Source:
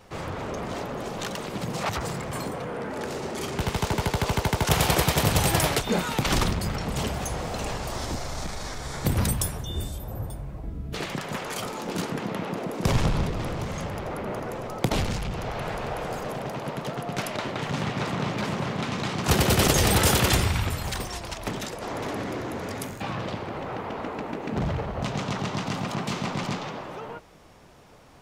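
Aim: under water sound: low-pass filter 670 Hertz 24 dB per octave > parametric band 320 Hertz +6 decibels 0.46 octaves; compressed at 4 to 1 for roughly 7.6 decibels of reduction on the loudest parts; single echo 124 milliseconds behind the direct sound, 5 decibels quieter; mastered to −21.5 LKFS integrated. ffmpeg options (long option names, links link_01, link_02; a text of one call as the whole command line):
ffmpeg -i in.wav -af "acompressor=threshold=-26dB:ratio=4,lowpass=frequency=670:width=0.5412,lowpass=frequency=670:width=1.3066,equalizer=frequency=320:width_type=o:width=0.46:gain=6,aecho=1:1:124:0.562,volume=10dB" out.wav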